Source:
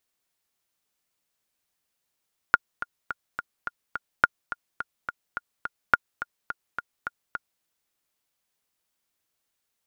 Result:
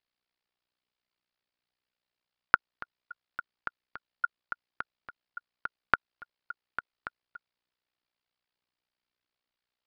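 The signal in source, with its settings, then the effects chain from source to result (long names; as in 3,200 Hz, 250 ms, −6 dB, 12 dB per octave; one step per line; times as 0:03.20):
click track 212 BPM, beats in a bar 6, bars 3, 1,420 Hz, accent 14 dB −2.5 dBFS
elliptic low-pass filter 4,900 Hz
amplitude modulation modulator 61 Hz, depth 95%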